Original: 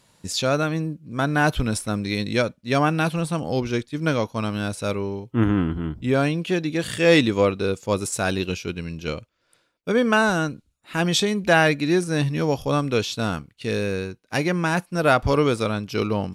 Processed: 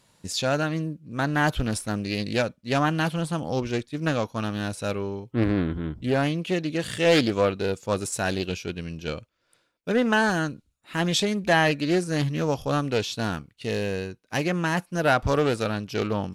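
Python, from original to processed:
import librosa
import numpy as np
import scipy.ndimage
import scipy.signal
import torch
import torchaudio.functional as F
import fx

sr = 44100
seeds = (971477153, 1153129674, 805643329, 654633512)

p1 = np.clip(10.0 ** (12.0 / 20.0) * x, -1.0, 1.0) / 10.0 ** (12.0 / 20.0)
p2 = x + (p1 * 10.0 ** (-10.0 / 20.0))
p3 = fx.doppler_dist(p2, sr, depth_ms=0.38)
y = p3 * 10.0 ** (-5.0 / 20.0)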